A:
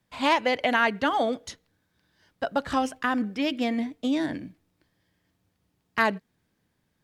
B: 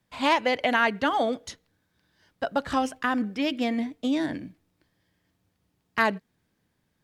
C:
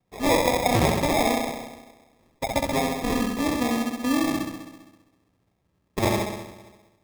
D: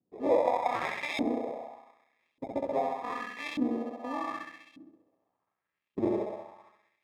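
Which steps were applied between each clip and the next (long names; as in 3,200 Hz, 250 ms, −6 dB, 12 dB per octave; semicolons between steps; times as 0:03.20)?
no processing that can be heard
flutter between parallel walls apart 11.3 metres, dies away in 1.2 s; decimation without filtering 30×
auto-filter band-pass saw up 0.84 Hz 260–3,000 Hz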